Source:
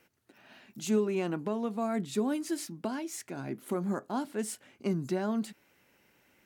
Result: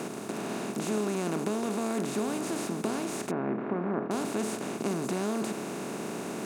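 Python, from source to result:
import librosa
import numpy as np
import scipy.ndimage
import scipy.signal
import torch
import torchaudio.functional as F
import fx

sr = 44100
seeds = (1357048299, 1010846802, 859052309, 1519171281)

y = fx.bin_compress(x, sr, power=0.2)
y = fx.lowpass(y, sr, hz=2000.0, slope=24, at=(3.31, 4.11))
y = y * 10.0 ** (-6.5 / 20.0)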